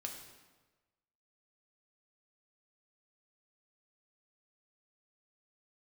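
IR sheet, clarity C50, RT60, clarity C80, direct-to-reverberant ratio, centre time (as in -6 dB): 5.5 dB, 1.3 s, 7.5 dB, 1.5 dB, 35 ms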